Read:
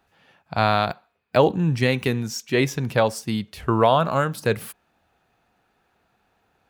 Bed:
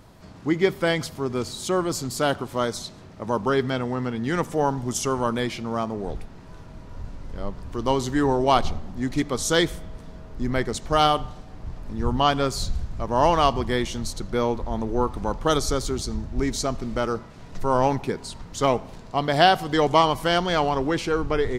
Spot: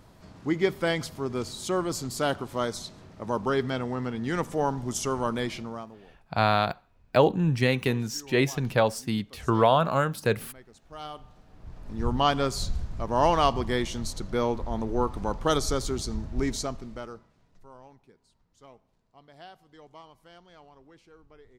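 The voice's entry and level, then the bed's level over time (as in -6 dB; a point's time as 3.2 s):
5.80 s, -3.0 dB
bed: 5.6 s -4 dB
6.13 s -26.5 dB
10.74 s -26.5 dB
12.02 s -3 dB
16.51 s -3 dB
17.84 s -31 dB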